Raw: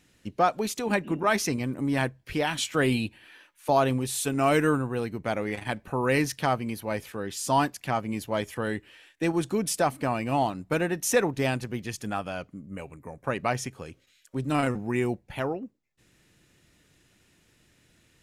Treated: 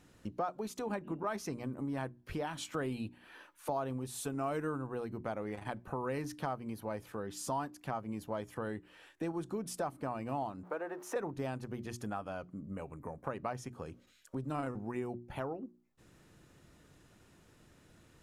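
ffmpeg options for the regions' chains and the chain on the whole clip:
-filter_complex "[0:a]asettb=1/sr,asplit=3[a][b][c];[a]atrim=end=10.634[d];[b]atrim=start=10.63:end=11.16,asetpts=PTS-STARTPTS,afade=t=in:d=0.004:c=qsin,afade=t=out:st=0.526:d=0.004:c=qsin,aeval=exprs='val(0)+0.5*0.00891*sgn(val(0))':c=same,highpass=230,acrossover=split=360 2100:gain=0.141 1 0.2[e][f][g];[e][f][g]amix=inputs=3:normalize=0[h];[c]atrim=start=11.156[i];[d][h]acrossfade=d=0.004:c1=hsin:c2=qsin[j];[j][i]acrossfade=d=0.004:c1=qsin:c2=hsin,highshelf=f=1.6k:t=q:w=1.5:g=-6.5,bandreject=f=60:t=h:w=6,bandreject=f=120:t=h:w=6,bandreject=f=180:t=h:w=6,bandreject=f=240:t=h:w=6,bandreject=f=300:t=h:w=6,bandreject=f=360:t=h:w=6,acompressor=threshold=-45dB:ratio=2.5,volume=3dB"

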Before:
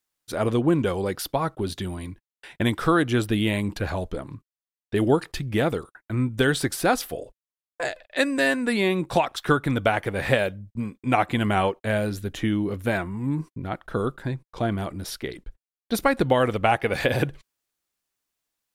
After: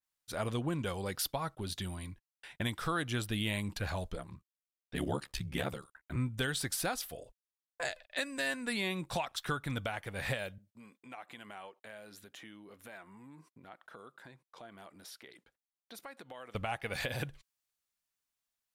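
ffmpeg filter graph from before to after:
-filter_complex "[0:a]asettb=1/sr,asplit=3[a][b][c];[a]atrim=end=4.164[d];[b]atrim=start=4.16:end=6.16,asetpts=PTS-STARTPTS,afade=t=in:d=0.004:c=qsin,afade=t=out:st=1.996:d=0.004:c=qsin,aecho=1:1:5.9:0.72,atrim=end_sample=88200,aeval=exprs='val(0)*sin(2*PI*35*n/s)':c=same[e];[c]atrim=start=6.156[f];[d][e]acrossfade=d=0.004:c1=hsin:c2=qsin[g];[g][f]acrossfade=d=0.004:c1=qsin:c2=hsin,asettb=1/sr,asplit=3[h][i][j];[h]atrim=end=10.584[k];[i]atrim=start=10.58:end=16.55,asetpts=PTS-STARTPTS,afade=t=in:d=0.004:c=qsin,afade=t=out:st=5.966:d=0.004:c=qsin,highpass=310,acompressor=threshold=-43dB:ratio=2.5:attack=3.2:release=140:knee=1:detection=peak[l];[j]atrim=start=16.546[m];[k][l]acrossfade=d=0.004:c1=hsin:c2=qsin[n];[n][m]acrossfade=d=0.004:c1=qsin:c2=hsin,equalizer=f=350:w=1.1:g=-7.5,alimiter=limit=-16.5dB:level=0:latency=1:release=469,adynamicequalizer=threshold=0.00794:dfrequency=2700:dqfactor=0.7:tfrequency=2700:tqfactor=0.7:attack=5:release=100:ratio=0.375:range=2.5:mode=boostabove:tftype=highshelf,volume=-7dB"

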